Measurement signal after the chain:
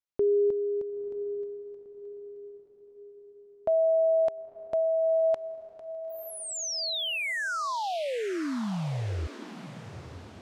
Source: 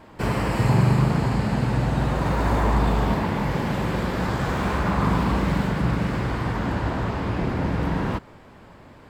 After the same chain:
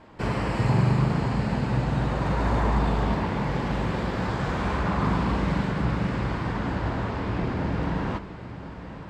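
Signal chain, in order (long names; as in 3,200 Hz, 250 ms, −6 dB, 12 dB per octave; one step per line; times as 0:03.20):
low-pass filter 6,800 Hz 12 dB per octave
on a send: feedback delay with all-pass diffusion 958 ms, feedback 48%, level −12.5 dB
on the sum: level −3 dB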